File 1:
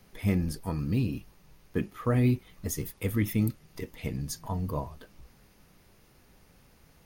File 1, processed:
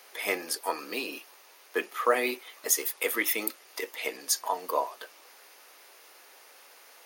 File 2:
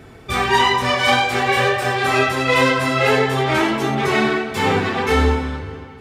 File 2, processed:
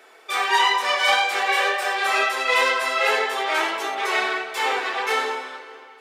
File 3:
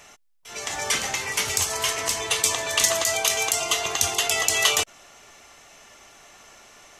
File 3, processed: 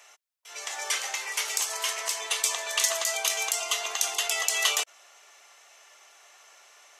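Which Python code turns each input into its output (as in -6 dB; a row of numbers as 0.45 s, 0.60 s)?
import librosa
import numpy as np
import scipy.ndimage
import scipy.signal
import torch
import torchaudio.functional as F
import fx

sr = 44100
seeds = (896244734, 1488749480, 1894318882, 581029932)

y = scipy.signal.sosfilt(scipy.signal.bessel(6, 660.0, 'highpass', norm='mag', fs=sr, output='sos'), x)
y = librosa.util.normalize(y) * 10.0 ** (-6 / 20.0)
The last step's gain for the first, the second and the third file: +11.0 dB, -1.5 dB, -4.5 dB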